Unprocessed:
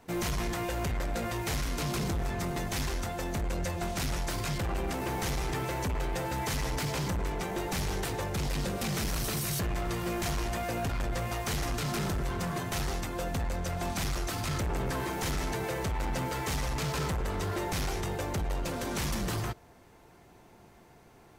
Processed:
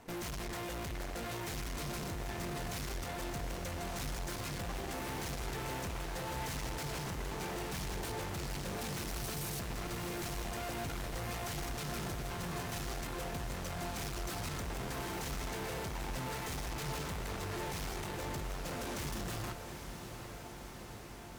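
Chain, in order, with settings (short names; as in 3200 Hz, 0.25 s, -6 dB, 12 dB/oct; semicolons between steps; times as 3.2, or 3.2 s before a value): tube stage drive 45 dB, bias 0.8; diffused feedback echo 0.788 s, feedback 74%, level -9 dB; gain +5.5 dB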